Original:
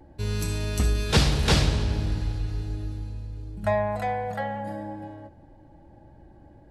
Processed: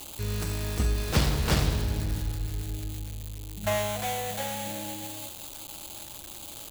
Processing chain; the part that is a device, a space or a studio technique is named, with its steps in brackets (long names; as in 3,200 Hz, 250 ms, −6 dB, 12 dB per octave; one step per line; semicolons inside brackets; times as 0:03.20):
budget class-D amplifier (gap after every zero crossing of 0.28 ms; spike at every zero crossing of −17.5 dBFS)
level −3 dB